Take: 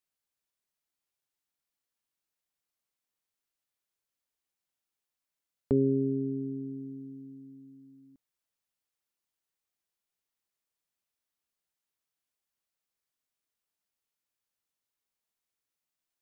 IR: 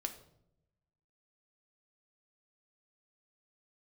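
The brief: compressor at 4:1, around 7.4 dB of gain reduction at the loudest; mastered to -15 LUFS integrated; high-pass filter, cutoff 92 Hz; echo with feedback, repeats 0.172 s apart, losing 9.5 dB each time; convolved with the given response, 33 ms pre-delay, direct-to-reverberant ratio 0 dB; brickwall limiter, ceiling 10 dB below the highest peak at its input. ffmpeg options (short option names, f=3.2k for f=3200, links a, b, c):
-filter_complex "[0:a]highpass=92,acompressor=threshold=-29dB:ratio=4,alimiter=level_in=5dB:limit=-24dB:level=0:latency=1,volume=-5dB,aecho=1:1:172|344|516|688:0.335|0.111|0.0365|0.012,asplit=2[a][b];[1:a]atrim=start_sample=2205,adelay=33[c];[b][c]afir=irnorm=-1:irlink=0,volume=0.5dB[d];[a][d]amix=inputs=2:normalize=0,volume=23dB"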